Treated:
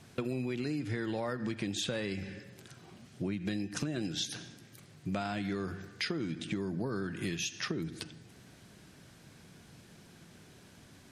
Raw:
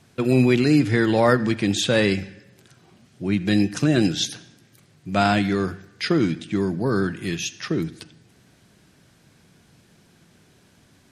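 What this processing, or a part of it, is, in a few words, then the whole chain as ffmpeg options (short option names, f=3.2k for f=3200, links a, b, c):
serial compression, peaks first: -af "acompressor=threshold=-26dB:ratio=6,acompressor=threshold=-34dB:ratio=2.5"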